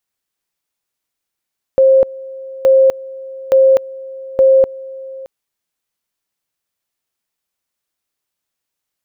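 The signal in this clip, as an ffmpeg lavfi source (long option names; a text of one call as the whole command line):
ffmpeg -f lavfi -i "aevalsrc='pow(10,(-5.5-21*gte(mod(t,0.87),0.25))/20)*sin(2*PI*532*t)':duration=3.48:sample_rate=44100" out.wav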